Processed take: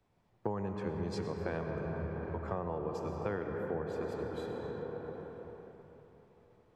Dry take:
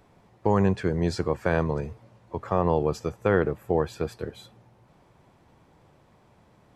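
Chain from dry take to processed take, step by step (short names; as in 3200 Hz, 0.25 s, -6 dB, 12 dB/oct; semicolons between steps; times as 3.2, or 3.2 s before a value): on a send at -2 dB: reverb RT60 4.7 s, pre-delay 70 ms; on the sum: compressor 5:1, threshold -35 dBFS, peak gain reduction 17 dB; high shelf 5100 Hz -7 dB; three-band expander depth 70%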